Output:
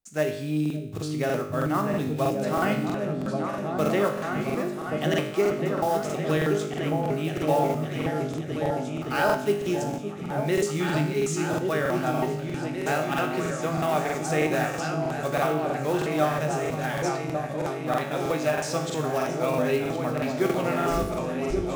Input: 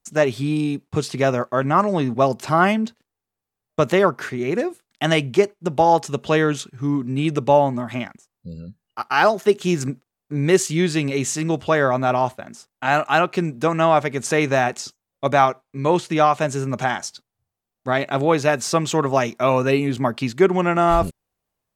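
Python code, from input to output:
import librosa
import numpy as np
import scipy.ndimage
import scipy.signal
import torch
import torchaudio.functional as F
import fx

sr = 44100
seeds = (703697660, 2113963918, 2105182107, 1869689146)

y = fx.block_float(x, sr, bits=5)
y = fx.peak_eq(y, sr, hz=1000.0, db=-7.5, octaves=0.25)
y = fx.comb_fb(y, sr, f0_hz=51.0, decay_s=0.74, harmonics='all', damping=0.0, mix_pct=80)
y = fx.echo_opening(y, sr, ms=564, hz=200, octaves=2, feedback_pct=70, wet_db=0)
y = fx.buffer_crackle(y, sr, first_s=0.61, period_s=0.32, block=2048, kind='repeat')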